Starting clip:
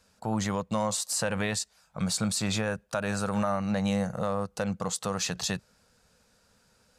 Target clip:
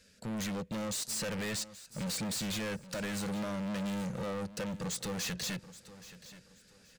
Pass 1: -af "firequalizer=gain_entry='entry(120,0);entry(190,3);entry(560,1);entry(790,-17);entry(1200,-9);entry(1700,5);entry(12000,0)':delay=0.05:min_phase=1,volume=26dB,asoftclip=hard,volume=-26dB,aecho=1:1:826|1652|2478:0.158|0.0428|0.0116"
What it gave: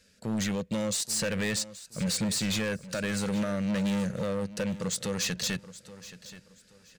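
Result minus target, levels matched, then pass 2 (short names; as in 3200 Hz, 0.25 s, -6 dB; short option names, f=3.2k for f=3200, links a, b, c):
overloaded stage: distortion -6 dB
-af "firequalizer=gain_entry='entry(120,0);entry(190,3);entry(560,1);entry(790,-17);entry(1200,-9);entry(1700,5);entry(12000,0)':delay=0.05:min_phase=1,volume=34.5dB,asoftclip=hard,volume=-34.5dB,aecho=1:1:826|1652|2478:0.158|0.0428|0.0116"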